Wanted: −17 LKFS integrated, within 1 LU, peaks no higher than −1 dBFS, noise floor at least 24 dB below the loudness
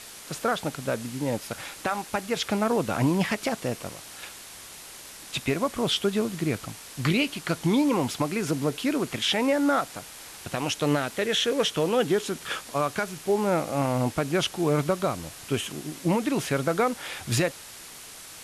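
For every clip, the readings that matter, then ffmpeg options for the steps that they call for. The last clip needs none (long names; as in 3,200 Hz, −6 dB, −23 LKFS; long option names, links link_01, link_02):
background noise floor −44 dBFS; target noise floor −51 dBFS; integrated loudness −27.0 LKFS; sample peak −13.0 dBFS; target loudness −17.0 LKFS
→ -af "afftdn=noise_reduction=7:noise_floor=-44"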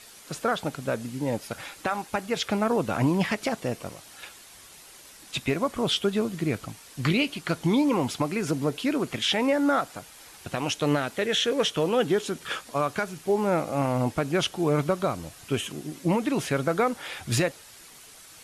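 background noise floor −49 dBFS; target noise floor −51 dBFS
→ -af "afftdn=noise_reduction=6:noise_floor=-49"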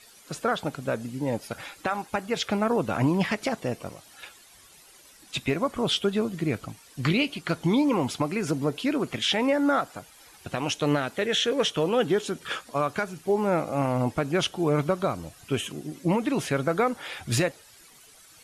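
background noise floor −53 dBFS; integrated loudness −27.0 LKFS; sample peak −13.0 dBFS; target loudness −17.0 LKFS
→ -af "volume=10dB"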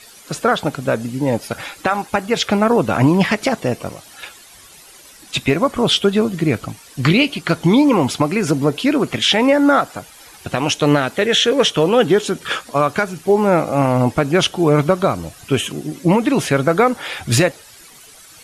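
integrated loudness −17.0 LKFS; sample peak −3.0 dBFS; background noise floor −43 dBFS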